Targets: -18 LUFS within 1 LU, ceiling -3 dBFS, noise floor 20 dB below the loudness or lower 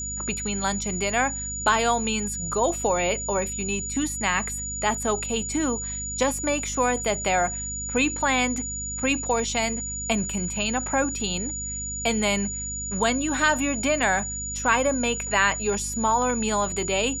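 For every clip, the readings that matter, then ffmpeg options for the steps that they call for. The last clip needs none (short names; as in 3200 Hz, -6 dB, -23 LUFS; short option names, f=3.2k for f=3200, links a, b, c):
hum 50 Hz; harmonics up to 250 Hz; hum level -35 dBFS; steady tone 6900 Hz; tone level -30 dBFS; loudness -24.5 LUFS; peak -7.0 dBFS; loudness target -18.0 LUFS
-> -af "bandreject=f=50:t=h:w=4,bandreject=f=100:t=h:w=4,bandreject=f=150:t=h:w=4,bandreject=f=200:t=h:w=4,bandreject=f=250:t=h:w=4"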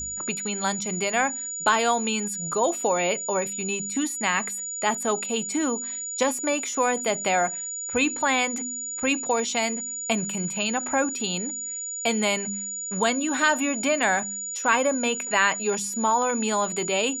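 hum none; steady tone 6900 Hz; tone level -30 dBFS
-> -af "bandreject=f=6.9k:w=30"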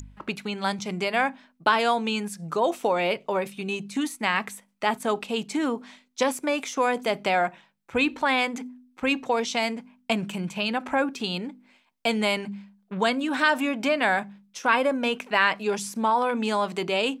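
steady tone none; loudness -26.0 LUFS; peak -7.5 dBFS; loudness target -18.0 LUFS
-> -af "volume=8dB,alimiter=limit=-3dB:level=0:latency=1"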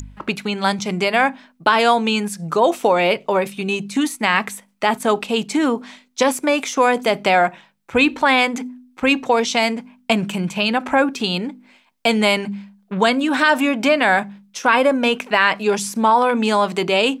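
loudness -18.0 LUFS; peak -3.0 dBFS; noise floor -58 dBFS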